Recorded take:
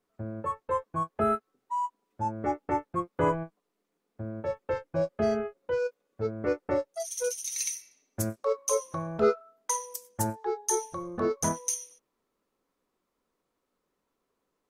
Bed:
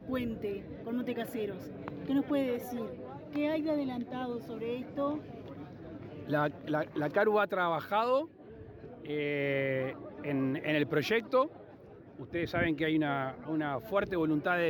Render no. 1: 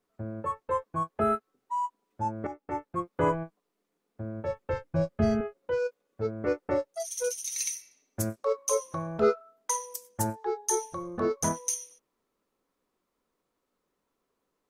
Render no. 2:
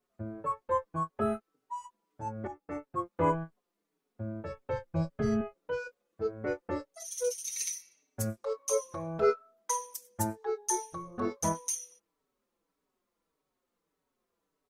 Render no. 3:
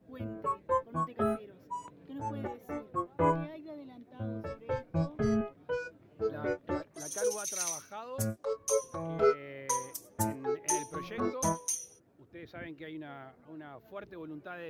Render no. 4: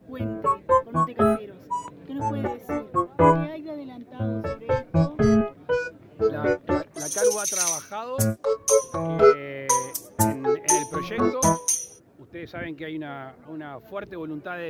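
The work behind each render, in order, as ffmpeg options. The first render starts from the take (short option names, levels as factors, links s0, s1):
-filter_complex "[0:a]asettb=1/sr,asplit=3[s0][s1][s2];[s0]atrim=end=4.274[s3];[s1]atrim=start=4.27:end=5.41,asetpts=PTS-STARTPTS,afade=t=in:d=0.004:c=qsin,afade=t=out:st=1.136:d=0.004:c=qsin,asubboost=boost=10.5:cutoff=210[s4];[s2]atrim=start=5.406[s5];[s3][s4]acrossfade=d=0.004:c1=hsin:c2=qsin[s6];[s6][s5]acrossfade=d=0.004:c1=qsin:c2=hsin,asplit=2[s7][s8];[s7]atrim=end=2.47,asetpts=PTS-STARTPTS,afade=t=out:st=2.466:d=0.004:c=hsin:silence=0.237137[s9];[s8]atrim=start=2.47,asetpts=PTS-STARTPTS,afade=t=in:d=0.63:silence=0.237137[s10];[s9][s10]concat=n=2:v=0:a=1"
-filter_complex "[0:a]asplit=2[s0][s1];[s1]adelay=5,afreqshift=-1.7[s2];[s0][s2]amix=inputs=2:normalize=1"
-filter_complex "[1:a]volume=0.2[s0];[0:a][s0]amix=inputs=2:normalize=0"
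-af "volume=3.35"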